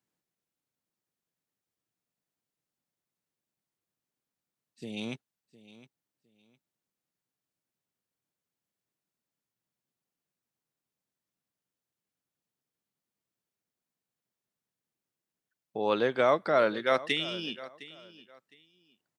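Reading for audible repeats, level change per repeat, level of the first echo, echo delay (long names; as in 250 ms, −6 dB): 2, −13.0 dB, −18.0 dB, 710 ms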